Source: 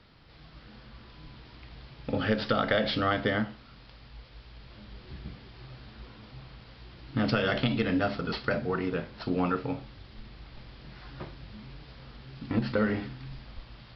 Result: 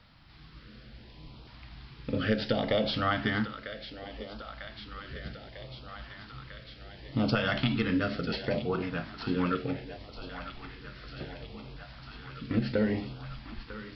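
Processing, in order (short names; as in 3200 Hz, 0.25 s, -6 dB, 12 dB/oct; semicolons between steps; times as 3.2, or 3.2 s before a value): thinning echo 0.948 s, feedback 77%, high-pass 340 Hz, level -12 dB; LFO notch saw up 0.68 Hz 350–2000 Hz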